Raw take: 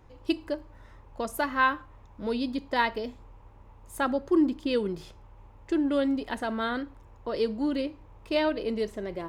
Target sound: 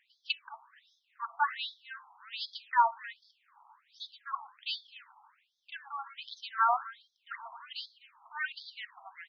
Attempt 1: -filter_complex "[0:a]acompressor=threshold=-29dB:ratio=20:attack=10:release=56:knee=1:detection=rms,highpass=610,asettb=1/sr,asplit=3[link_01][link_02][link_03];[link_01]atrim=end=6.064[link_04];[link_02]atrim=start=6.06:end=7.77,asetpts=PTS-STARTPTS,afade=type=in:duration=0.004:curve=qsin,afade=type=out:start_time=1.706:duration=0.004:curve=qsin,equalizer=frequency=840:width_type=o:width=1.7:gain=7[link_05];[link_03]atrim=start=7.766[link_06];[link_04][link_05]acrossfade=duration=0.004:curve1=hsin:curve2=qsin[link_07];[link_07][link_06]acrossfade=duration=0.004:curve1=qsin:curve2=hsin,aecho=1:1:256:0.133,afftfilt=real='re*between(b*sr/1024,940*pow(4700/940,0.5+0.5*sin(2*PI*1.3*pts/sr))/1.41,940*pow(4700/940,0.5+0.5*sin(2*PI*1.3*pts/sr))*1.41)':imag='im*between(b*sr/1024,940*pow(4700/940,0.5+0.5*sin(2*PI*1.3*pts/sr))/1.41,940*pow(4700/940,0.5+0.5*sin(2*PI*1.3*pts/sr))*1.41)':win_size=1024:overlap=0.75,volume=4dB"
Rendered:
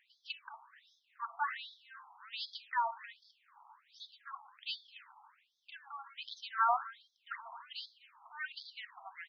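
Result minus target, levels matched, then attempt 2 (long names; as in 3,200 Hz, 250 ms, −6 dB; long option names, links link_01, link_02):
downward compressor: peak gain reduction +12 dB
-filter_complex "[0:a]highpass=610,asettb=1/sr,asplit=3[link_01][link_02][link_03];[link_01]atrim=end=6.064[link_04];[link_02]atrim=start=6.06:end=7.77,asetpts=PTS-STARTPTS,afade=type=in:duration=0.004:curve=qsin,afade=type=out:start_time=1.706:duration=0.004:curve=qsin,equalizer=frequency=840:width_type=o:width=1.7:gain=7[link_05];[link_03]atrim=start=7.766[link_06];[link_04][link_05]acrossfade=duration=0.004:curve1=hsin:curve2=qsin[link_07];[link_07][link_06]acrossfade=duration=0.004:curve1=qsin:curve2=hsin,aecho=1:1:256:0.133,afftfilt=real='re*between(b*sr/1024,940*pow(4700/940,0.5+0.5*sin(2*PI*1.3*pts/sr))/1.41,940*pow(4700/940,0.5+0.5*sin(2*PI*1.3*pts/sr))*1.41)':imag='im*between(b*sr/1024,940*pow(4700/940,0.5+0.5*sin(2*PI*1.3*pts/sr))/1.41,940*pow(4700/940,0.5+0.5*sin(2*PI*1.3*pts/sr))*1.41)':win_size=1024:overlap=0.75,volume=4dB"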